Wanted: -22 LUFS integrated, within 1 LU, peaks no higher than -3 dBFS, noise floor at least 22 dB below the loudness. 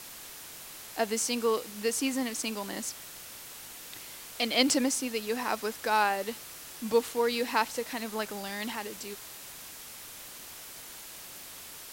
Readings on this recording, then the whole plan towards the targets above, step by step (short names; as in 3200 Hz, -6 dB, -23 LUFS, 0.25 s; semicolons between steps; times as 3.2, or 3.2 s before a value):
noise floor -46 dBFS; noise floor target -53 dBFS; loudness -30.5 LUFS; peak -9.5 dBFS; loudness target -22.0 LUFS
-> noise print and reduce 7 dB; gain +8.5 dB; limiter -3 dBFS